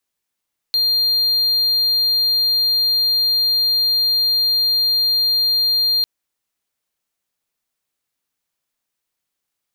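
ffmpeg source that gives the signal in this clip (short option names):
-f lavfi -i "aevalsrc='0.251*(1-4*abs(mod(4200*t+0.25,1)-0.5))':d=5.3:s=44100"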